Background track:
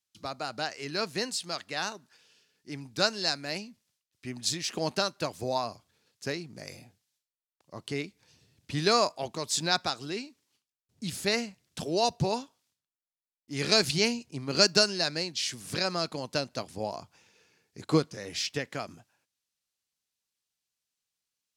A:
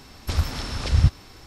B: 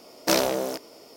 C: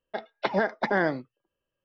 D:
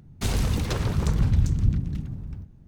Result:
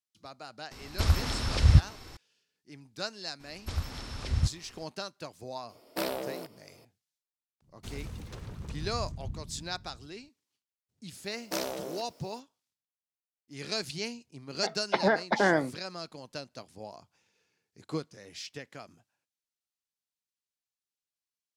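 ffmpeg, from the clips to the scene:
ffmpeg -i bed.wav -i cue0.wav -i cue1.wav -i cue2.wav -i cue3.wav -filter_complex "[1:a]asplit=2[link_01][link_02];[2:a]asplit=2[link_03][link_04];[0:a]volume=-10dB[link_05];[link_03]equalizer=frequency=6300:width=3.1:gain=-13.5[link_06];[link_04]acrusher=bits=8:mix=0:aa=0.000001[link_07];[link_01]atrim=end=1.46,asetpts=PTS-STARTPTS,volume=-1.5dB,afade=type=in:duration=0.004:curve=hsin,afade=type=out:start_time=1.456:duration=0.004:curve=hsin,adelay=710[link_08];[link_02]atrim=end=1.46,asetpts=PTS-STARTPTS,volume=-10dB,afade=type=in:duration=0.02,afade=type=out:start_time=1.44:duration=0.02,adelay=3390[link_09];[link_06]atrim=end=1.16,asetpts=PTS-STARTPTS,volume=-10dB,afade=type=in:duration=0.004:curve=hsin,afade=type=out:start_time=1.156:duration=0.004:curve=hsin,adelay=250929S[link_10];[4:a]atrim=end=2.67,asetpts=PTS-STARTPTS,volume=-17dB,afade=type=in:duration=0.004:curve=hsin,afade=type=out:start_time=2.666:duration=0.004:curve=hsin,adelay=336042S[link_11];[link_07]atrim=end=1.16,asetpts=PTS-STARTPTS,volume=-11.5dB,afade=type=in:duration=0.004:curve=hsin,afade=type=out:start_time=1.156:duration=0.004:curve=hsin,adelay=11240[link_12];[3:a]atrim=end=1.84,asetpts=PTS-STARTPTS,afade=type=in:duration=0.004:curve=hsin,afade=type=out:start_time=1.836:duration=0.004:curve=hsin,adelay=14490[link_13];[link_05][link_08][link_09][link_10][link_11][link_12][link_13]amix=inputs=7:normalize=0" out.wav

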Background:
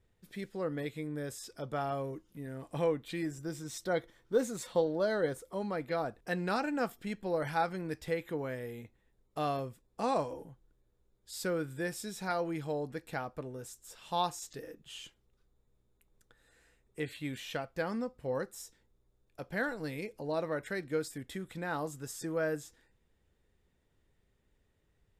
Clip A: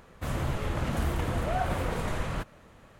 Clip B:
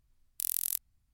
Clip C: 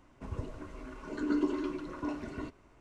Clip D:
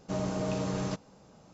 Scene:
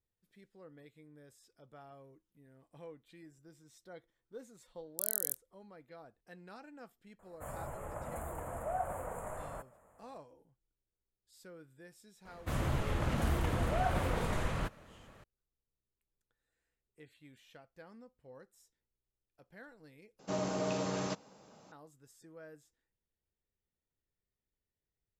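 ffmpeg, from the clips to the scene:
ffmpeg -i bed.wav -i cue0.wav -i cue1.wav -i cue2.wav -i cue3.wav -filter_complex "[1:a]asplit=2[link_01][link_02];[0:a]volume=-19.5dB[link_03];[2:a]afwtdn=0.00891[link_04];[link_01]firequalizer=gain_entry='entry(340,0);entry(600,13);entry(5000,-28);entry(7100,12)':delay=0.05:min_phase=1[link_05];[4:a]highpass=frequency=300:poles=1[link_06];[link_03]asplit=2[link_07][link_08];[link_07]atrim=end=20.194[link_09];[link_06]atrim=end=1.53[link_10];[link_08]atrim=start=21.716[link_11];[link_04]atrim=end=1.13,asetpts=PTS-STARTPTS,volume=-2.5dB,afade=type=in:duration=0.004:curve=hsin,afade=type=out:start_time=1.126:duration=0.004:curve=hsin,adelay=4590[link_12];[link_05]atrim=end=2.99,asetpts=PTS-STARTPTS,volume=-17dB,afade=type=in:duration=0.004:curve=hsin,afade=type=out:start_time=2.986:duration=0.004:curve=hsin,adelay=7190[link_13];[link_02]atrim=end=2.99,asetpts=PTS-STARTPTS,volume=-3dB,afade=type=in:duration=0.004:curve=hsin,afade=type=out:start_time=2.986:duration=0.004:curve=hsin,adelay=12250[link_14];[link_09][link_10]acrossfade=duration=0.004:curve1=hsin:curve2=hsin[link_15];[link_15][link_11]acrossfade=duration=0.004:curve1=hsin:curve2=hsin[link_16];[link_16][link_12][link_13][link_14]amix=inputs=4:normalize=0" out.wav

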